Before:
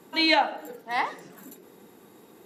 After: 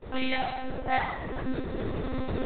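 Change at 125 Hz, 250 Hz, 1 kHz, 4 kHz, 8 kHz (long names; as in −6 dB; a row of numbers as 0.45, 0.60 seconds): +21.5 dB, +0.5 dB, −3.5 dB, −11.0 dB, below −30 dB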